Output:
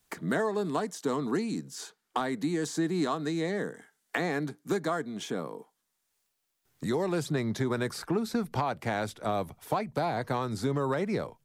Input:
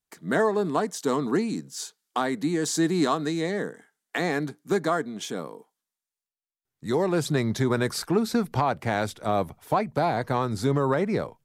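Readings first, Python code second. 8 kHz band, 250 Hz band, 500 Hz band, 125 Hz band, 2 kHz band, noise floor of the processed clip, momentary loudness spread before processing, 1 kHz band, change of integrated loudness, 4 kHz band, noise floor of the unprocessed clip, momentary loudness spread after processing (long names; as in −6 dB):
−7.5 dB, −4.5 dB, −5.5 dB, −5.0 dB, −4.5 dB, −80 dBFS, 9 LU, −5.5 dB, −5.0 dB, −5.5 dB, below −85 dBFS, 6 LU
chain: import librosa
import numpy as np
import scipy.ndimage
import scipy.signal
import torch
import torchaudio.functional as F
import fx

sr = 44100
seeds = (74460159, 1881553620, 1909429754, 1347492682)

y = fx.band_squash(x, sr, depth_pct=70)
y = y * librosa.db_to_amplitude(-5.5)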